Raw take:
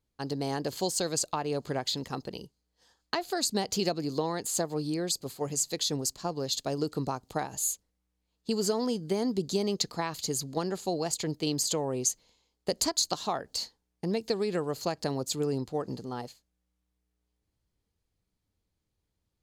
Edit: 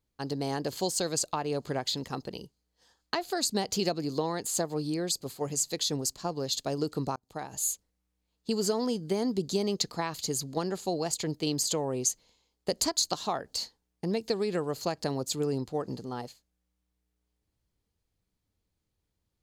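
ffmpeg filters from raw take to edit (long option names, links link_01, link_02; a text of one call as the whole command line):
ffmpeg -i in.wav -filter_complex "[0:a]asplit=2[link_01][link_02];[link_01]atrim=end=7.16,asetpts=PTS-STARTPTS,afade=type=out:start_time=7.156:duration=0.004:curve=hsin[link_03];[link_02]atrim=start=7.16,asetpts=PTS-STARTPTS,afade=type=in:duration=0.46[link_04];[link_03][link_04]concat=n=2:v=0:a=1" out.wav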